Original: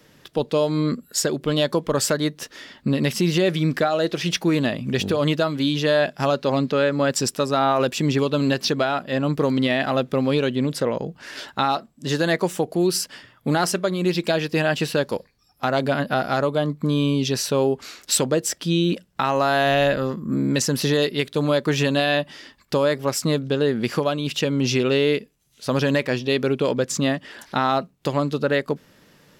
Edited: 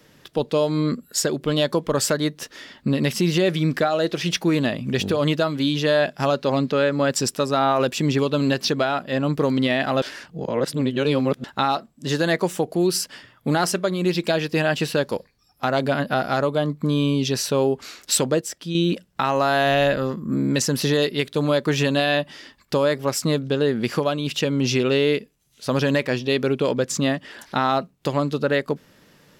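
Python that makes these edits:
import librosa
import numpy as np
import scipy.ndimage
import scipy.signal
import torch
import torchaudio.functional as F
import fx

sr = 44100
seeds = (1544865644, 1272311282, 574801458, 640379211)

y = fx.edit(x, sr, fx.reverse_span(start_s=10.02, length_s=1.42),
    fx.clip_gain(start_s=18.41, length_s=0.34, db=-6.5), tone=tone)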